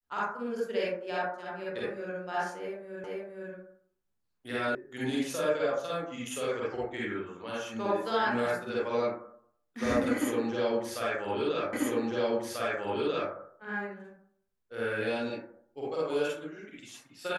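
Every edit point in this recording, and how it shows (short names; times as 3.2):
3.04 repeat of the last 0.47 s
4.75 sound cut off
11.73 repeat of the last 1.59 s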